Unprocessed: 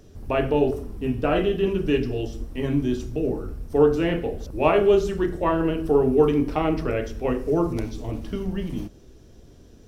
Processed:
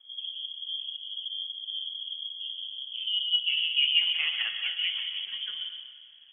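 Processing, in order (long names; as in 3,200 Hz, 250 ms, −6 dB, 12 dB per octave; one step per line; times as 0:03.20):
low-pass filter sweep 100 Hz → 1,500 Hz, 0:04.11–0:06.50
time stretch by overlap-add 0.64×, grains 126 ms
surface crackle 290 per second −52 dBFS
pitch vibrato 6.6 Hz 41 cents
dense smooth reverb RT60 1.4 s, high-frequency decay 0.8×, pre-delay 110 ms, DRR 6 dB
voice inversion scrambler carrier 3,300 Hz
level −8 dB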